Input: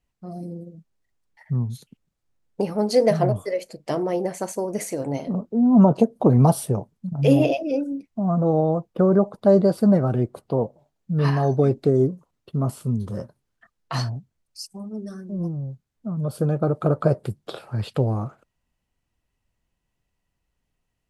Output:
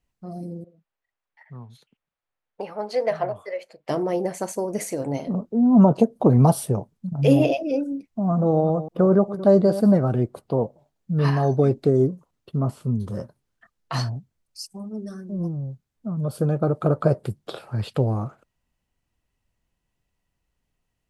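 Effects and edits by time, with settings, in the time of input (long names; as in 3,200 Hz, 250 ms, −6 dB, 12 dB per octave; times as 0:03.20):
0:00.64–0:03.89: three-way crossover with the lows and the highs turned down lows −17 dB, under 540 Hz, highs −16 dB, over 3,500 Hz
0:07.95–0:09.93: delay that plays each chunk backwards 187 ms, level −13.5 dB
0:12.59–0:13.00: low-pass filter 3,100 Hz 6 dB per octave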